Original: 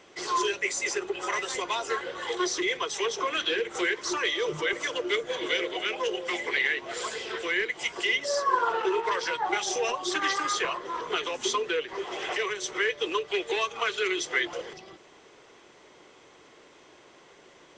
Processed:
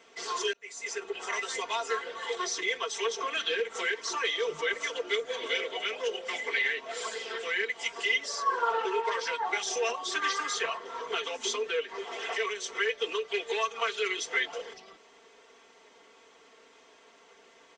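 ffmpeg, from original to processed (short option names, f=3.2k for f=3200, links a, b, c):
-filter_complex "[0:a]asplit=2[a][b];[a]atrim=end=0.53,asetpts=PTS-STARTPTS,afade=t=out:st=0.526:d=0.004:c=hsin[c];[b]atrim=start=0.53,asetpts=PTS-STARTPTS,afade=t=in:d=0.62[d];[c][d]concat=n=2:v=0:a=1,highpass=f=69:p=1,equalizer=f=130:t=o:w=1.7:g=-9.5,aecho=1:1:4.4:0.97,volume=-5dB"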